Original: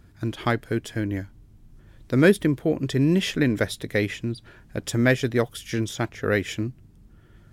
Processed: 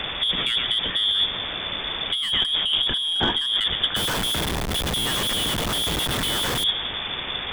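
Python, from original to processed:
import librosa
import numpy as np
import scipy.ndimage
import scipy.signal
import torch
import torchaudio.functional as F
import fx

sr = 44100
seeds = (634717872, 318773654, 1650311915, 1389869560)

y = fx.quant_dither(x, sr, seeds[0], bits=6, dither='triangular')
y = fx.peak_eq(y, sr, hz=69.0, db=10.0, octaves=1.8)
y = fx.freq_invert(y, sr, carrier_hz=3500)
y = fx.echo_feedback(y, sr, ms=115, feedback_pct=52, wet_db=-16.5)
y = 10.0 ** (-12.5 / 20.0) * np.tanh(y / 10.0 ** (-12.5 / 20.0))
y = fx.over_compress(y, sr, threshold_db=-26.0, ratio=-1.0)
y = fx.schmitt(y, sr, flips_db=-30.0, at=(3.96, 6.64))
y = fx.band_squash(y, sr, depth_pct=40)
y = y * 10.0 ** (3.5 / 20.0)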